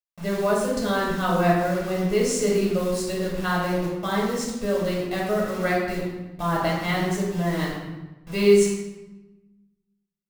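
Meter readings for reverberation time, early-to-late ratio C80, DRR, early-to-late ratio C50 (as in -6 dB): 1.1 s, 4.0 dB, -4.5 dB, 1.0 dB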